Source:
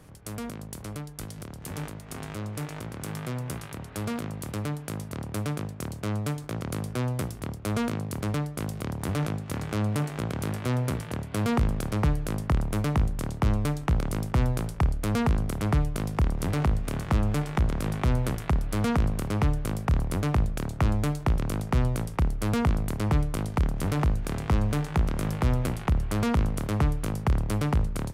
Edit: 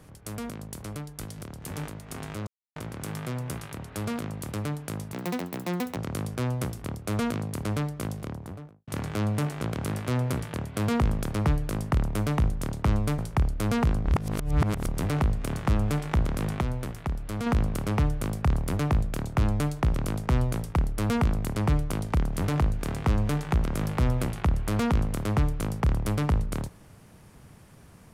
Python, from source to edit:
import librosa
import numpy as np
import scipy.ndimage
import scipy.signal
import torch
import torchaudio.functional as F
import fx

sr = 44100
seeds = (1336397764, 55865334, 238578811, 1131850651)

y = fx.studio_fade_out(x, sr, start_s=8.53, length_s=0.92)
y = fx.edit(y, sr, fx.silence(start_s=2.47, length_s=0.29),
    fx.speed_span(start_s=5.13, length_s=1.41, speed=1.69),
    fx.cut(start_s=13.76, length_s=0.86),
    fx.reverse_span(start_s=15.49, length_s=0.81),
    fx.clip_gain(start_s=18.05, length_s=0.85, db=-5.5), tone=tone)